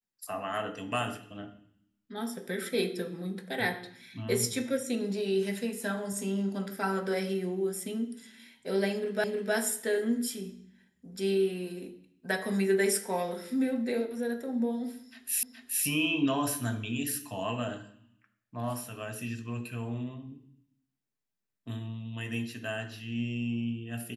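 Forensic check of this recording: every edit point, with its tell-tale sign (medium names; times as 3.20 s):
9.24 s: repeat of the last 0.31 s
15.43 s: repeat of the last 0.42 s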